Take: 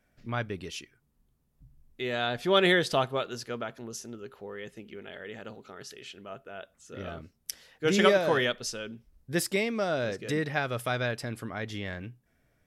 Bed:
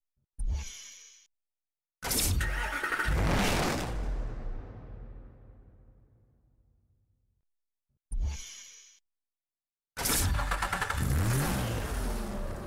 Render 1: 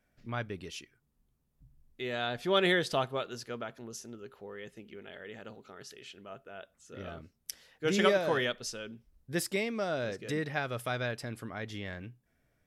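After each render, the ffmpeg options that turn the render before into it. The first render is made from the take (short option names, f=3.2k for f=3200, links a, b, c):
-af "volume=-4dB"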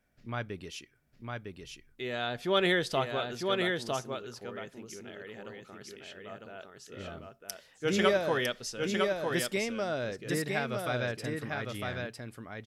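-af "aecho=1:1:955:0.668"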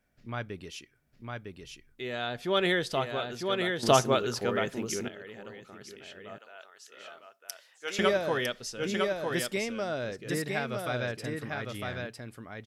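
-filter_complex "[0:a]asettb=1/sr,asplit=3[a][b][c];[a]atrim=end=6.384[d];[b]atrim=start=6.38:end=7.99,asetpts=PTS-STARTPTS,afade=t=in:d=0.004:c=qsin,afade=t=out:st=1.606:d=0.004:c=qsin,highpass=760[e];[c]atrim=start=7.986[f];[d][e]acrossfade=d=0.004:c1=hsin:c2=qsin[g];[g][f]acrossfade=d=0.004:c1=qsin:c2=hsin,asplit=3[h][i][j];[h]atrim=end=3.832[k];[i]atrim=start=3.828:end=5.082,asetpts=PTS-STARTPTS,volume=12dB[l];[j]atrim=start=5.078[m];[k][l]acrossfade=d=0.004:c1=hsin:c2=hsin[n];[n][m]acrossfade=d=0.004:c1=hsin:c2=hsin"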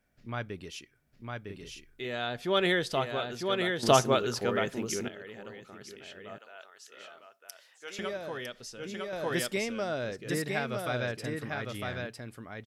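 -filter_complex "[0:a]asplit=3[a][b][c];[a]afade=t=out:st=1.48:d=0.02[d];[b]asplit=2[e][f];[f]adelay=41,volume=-3dB[g];[e][g]amix=inputs=2:normalize=0,afade=t=in:st=1.48:d=0.02,afade=t=out:st=2.05:d=0.02[h];[c]afade=t=in:st=2.05:d=0.02[i];[d][h][i]amix=inputs=3:normalize=0,asettb=1/sr,asplit=3[j][k][l];[j]atrim=end=7.054[m];[k]atrim=start=7.05:end=9.13,asetpts=PTS-STARTPTS,afade=t=in:d=0.004:c=qsin,afade=t=out:st=2.076:d=0.004:c=qsin,acompressor=threshold=-50dB:ratio=1.5:attack=3.2:release=140:knee=1:detection=peak[n];[l]atrim=start=9.126[o];[m][n]acrossfade=d=0.004:c1=hsin:c2=qsin[p];[p][o]acrossfade=d=0.004:c1=qsin:c2=hsin"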